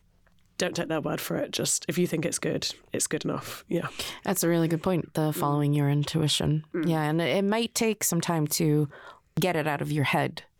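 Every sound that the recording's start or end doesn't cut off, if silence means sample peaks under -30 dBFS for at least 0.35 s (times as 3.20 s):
0.60–8.86 s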